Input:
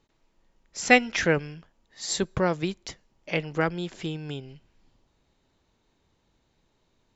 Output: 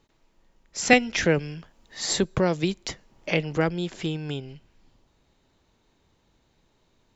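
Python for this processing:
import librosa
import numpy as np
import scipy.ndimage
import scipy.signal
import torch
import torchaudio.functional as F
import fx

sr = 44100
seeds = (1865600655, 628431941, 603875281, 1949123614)

y = fx.dynamic_eq(x, sr, hz=1300.0, q=0.88, threshold_db=-39.0, ratio=4.0, max_db=-6)
y = fx.band_squash(y, sr, depth_pct=40, at=(0.93, 3.57))
y = y * librosa.db_to_amplitude(3.5)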